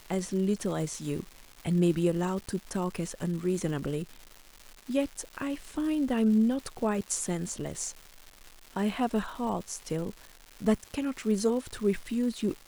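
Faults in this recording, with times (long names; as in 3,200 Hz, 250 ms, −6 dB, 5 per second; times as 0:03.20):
surface crackle 420 per second −38 dBFS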